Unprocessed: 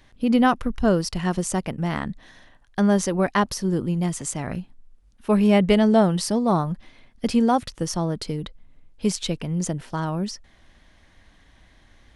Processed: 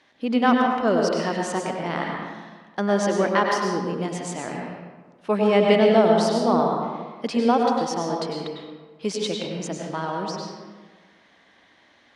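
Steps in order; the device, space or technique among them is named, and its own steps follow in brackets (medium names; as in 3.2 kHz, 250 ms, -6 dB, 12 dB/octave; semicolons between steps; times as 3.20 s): supermarket ceiling speaker (band-pass 300–5600 Hz; reverberation RT60 1.4 s, pre-delay 93 ms, DRR 0 dB)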